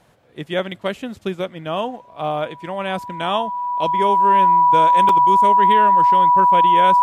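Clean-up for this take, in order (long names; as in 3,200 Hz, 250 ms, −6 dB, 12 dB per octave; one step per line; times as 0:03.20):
notch filter 980 Hz, Q 30
repair the gap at 0:01.19/0:05.09, 2.5 ms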